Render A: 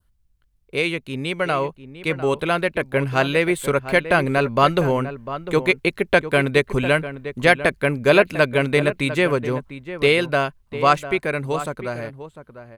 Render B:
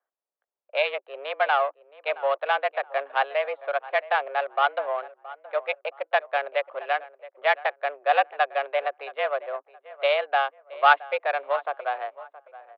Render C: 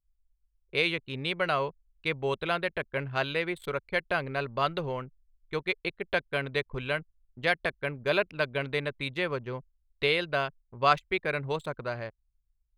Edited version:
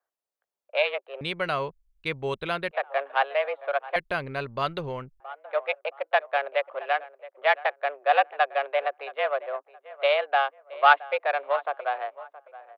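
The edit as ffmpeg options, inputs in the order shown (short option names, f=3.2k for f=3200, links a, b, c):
-filter_complex "[2:a]asplit=2[a][b];[1:a]asplit=3[c][d][e];[c]atrim=end=1.212[f];[a]atrim=start=1.208:end=2.712[g];[d]atrim=start=2.708:end=3.962[h];[b]atrim=start=3.958:end=5.202[i];[e]atrim=start=5.198[j];[f][g]acrossfade=d=0.004:c1=hsin:c2=hsin[k];[k][h]acrossfade=d=0.004:c1=hsin:c2=hsin[l];[l][i]acrossfade=d=0.004:c1=hsin:c2=hsin[m];[m][j]acrossfade=d=0.004:c1=hsin:c2=hsin"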